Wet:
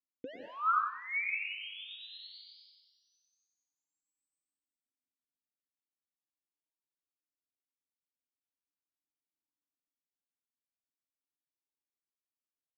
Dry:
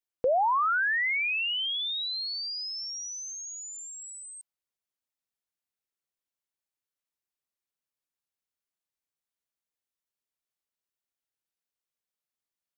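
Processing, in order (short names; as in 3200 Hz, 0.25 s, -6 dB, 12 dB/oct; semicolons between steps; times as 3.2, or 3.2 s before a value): Wiener smoothing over 25 samples; phaser 0.21 Hz, delay 2.7 ms, feedback 38%; thinning echo 93 ms, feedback 70%, high-pass 960 Hz, level -8.5 dB; on a send at -2 dB: reverb, pre-delay 0.103 s; on the sum: vowel sweep i-u 0.38 Hz; gain +3.5 dB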